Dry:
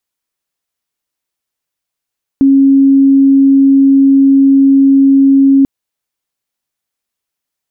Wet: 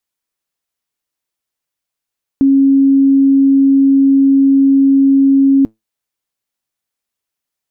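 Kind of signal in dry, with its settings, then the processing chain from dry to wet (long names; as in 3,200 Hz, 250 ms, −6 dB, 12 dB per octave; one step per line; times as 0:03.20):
tone sine 273 Hz −3.5 dBFS 3.24 s
tuned comb filter 110 Hz, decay 0.18 s, harmonics all, mix 30%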